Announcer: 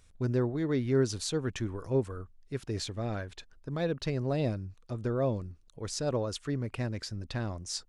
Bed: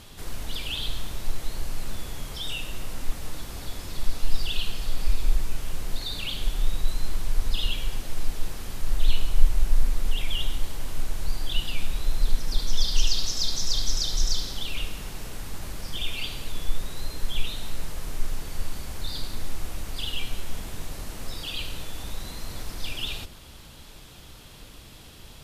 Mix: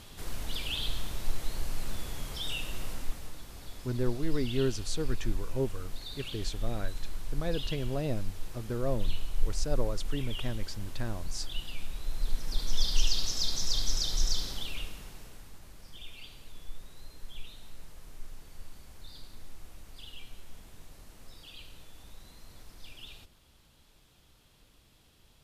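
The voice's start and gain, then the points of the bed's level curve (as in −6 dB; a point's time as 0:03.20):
3.65 s, −3.0 dB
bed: 0:02.89 −3 dB
0:03.36 −10 dB
0:11.99 −10 dB
0:12.83 −4 dB
0:14.51 −4 dB
0:15.62 −16 dB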